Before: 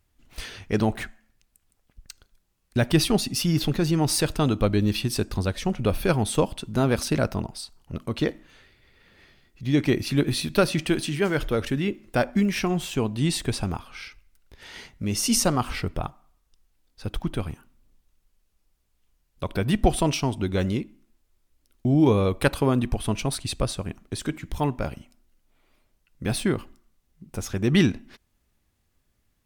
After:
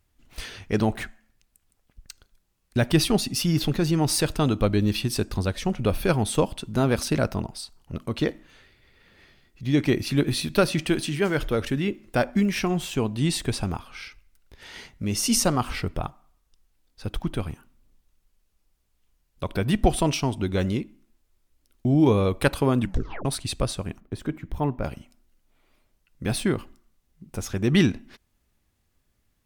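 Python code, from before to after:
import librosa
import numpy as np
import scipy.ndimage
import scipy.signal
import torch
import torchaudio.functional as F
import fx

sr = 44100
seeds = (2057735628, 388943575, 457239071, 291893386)

y = fx.peak_eq(x, sr, hz=7100.0, db=-14.0, octaves=2.8, at=(24.0, 24.84))
y = fx.edit(y, sr, fx.tape_stop(start_s=22.8, length_s=0.45), tone=tone)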